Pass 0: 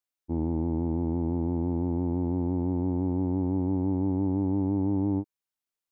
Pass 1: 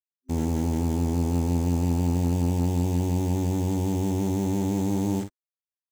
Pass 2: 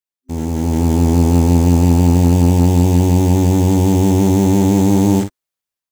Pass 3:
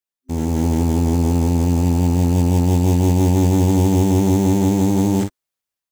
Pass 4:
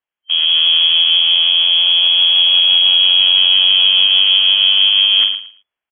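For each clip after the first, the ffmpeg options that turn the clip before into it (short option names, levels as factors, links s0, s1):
-filter_complex "[0:a]acrusher=bits=8:dc=4:mix=0:aa=0.000001,superequalizer=6b=0.447:15b=2.24,asplit=2[s0][s1];[s1]aecho=0:1:46|56:0.335|0.168[s2];[s0][s2]amix=inputs=2:normalize=0,volume=1.58"
-af "dynaudnorm=f=280:g=5:m=3.55,volume=1.33"
-af "alimiter=limit=0.398:level=0:latency=1"
-af "aecho=1:1:112|224|336:0.282|0.062|0.0136,apsyclip=5.96,lowpass=f=2900:t=q:w=0.5098,lowpass=f=2900:t=q:w=0.6013,lowpass=f=2900:t=q:w=0.9,lowpass=f=2900:t=q:w=2.563,afreqshift=-3400,volume=0.422"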